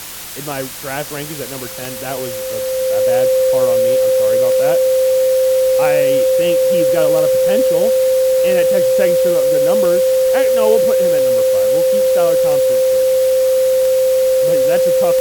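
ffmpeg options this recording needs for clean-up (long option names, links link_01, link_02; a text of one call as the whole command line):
ffmpeg -i in.wav -af "adeclick=threshold=4,bandreject=frequency=53.5:width_type=h:width=4,bandreject=frequency=107:width_type=h:width=4,bandreject=frequency=160.5:width_type=h:width=4,bandreject=frequency=520:width=30,afftdn=noise_reduction=30:noise_floor=-25" out.wav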